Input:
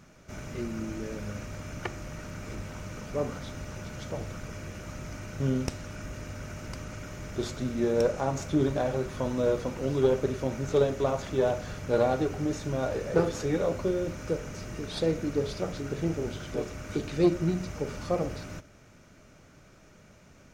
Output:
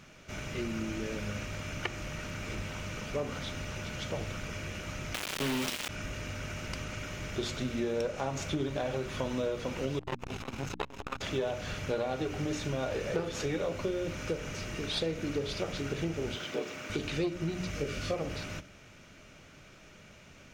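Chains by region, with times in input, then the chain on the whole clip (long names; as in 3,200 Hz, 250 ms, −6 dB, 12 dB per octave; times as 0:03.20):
0:05.14–0:05.89: high-pass filter 240 Hz + log-companded quantiser 2 bits
0:09.99–0:11.21: lower of the sound and its delayed copy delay 0.76 ms + upward compression, threshold −34 dBFS + saturating transformer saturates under 700 Hz
0:16.35–0:16.90: high-pass filter 220 Hz + linearly interpolated sample-rate reduction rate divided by 2×
0:17.71–0:18.14: parametric band 900 Hz −14 dB 0.4 octaves + double-tracking delay 21 ms −3.5 dB
whole clip: parametric band 2,900 Hz +9 dB 1.2 octaves; mains-hum notches 60/120/180/240/300 Hz; downward compressor, threshold −29 dBFS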